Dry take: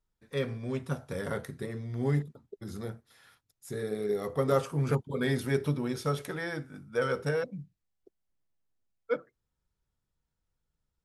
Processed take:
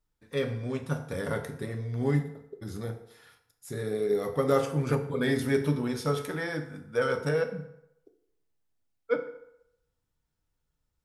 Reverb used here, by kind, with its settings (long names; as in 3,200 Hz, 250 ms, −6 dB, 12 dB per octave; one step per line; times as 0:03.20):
feedback delay network reverb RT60 0.8 s, low-frequency decay 0.75×, high-frequency decay 0.7×, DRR 6 dB
level +1.5 dB